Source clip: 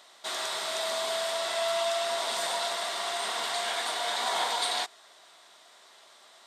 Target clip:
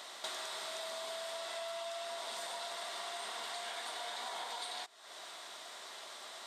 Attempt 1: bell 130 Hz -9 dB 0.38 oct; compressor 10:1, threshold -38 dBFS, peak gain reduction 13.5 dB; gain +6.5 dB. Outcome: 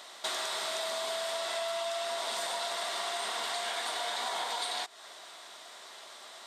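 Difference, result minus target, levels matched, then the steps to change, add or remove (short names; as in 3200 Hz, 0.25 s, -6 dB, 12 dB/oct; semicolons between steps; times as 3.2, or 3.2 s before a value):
compressor: peak gain reduction -7.5 dB
change: compressor 10:1, threshold -46.5 dBFS, peak gain reduction 21 dB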